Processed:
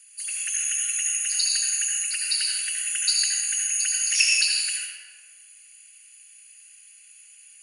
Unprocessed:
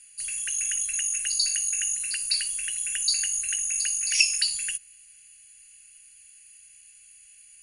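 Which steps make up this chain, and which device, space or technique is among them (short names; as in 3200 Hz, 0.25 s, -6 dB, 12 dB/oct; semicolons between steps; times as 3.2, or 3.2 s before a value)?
whispering ghost (whisperiser; HPF 490 Hz 24 dB/oct; reverb RT60 1.9 s, pre-delay 67 ms, DRR -2 dB)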